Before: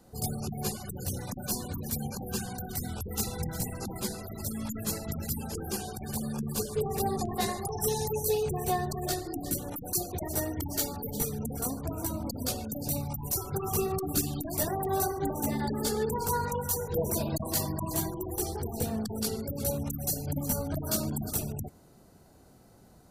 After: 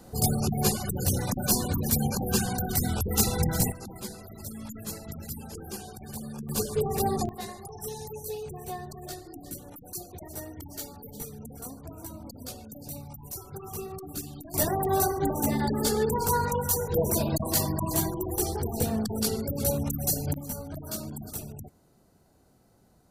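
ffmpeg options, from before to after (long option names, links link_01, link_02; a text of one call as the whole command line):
ffmpeg -i in.wav -af "asetnsamples=nb_out_samples=441:pad=0,asendcmd='3.72 volume volume -4.5dB;6.49 volume volume 3dB;7.29 volume volume -8dB;14.54 volume volume 4dB;20.34 volume volume -5.5dB',volume=8dB" out.wav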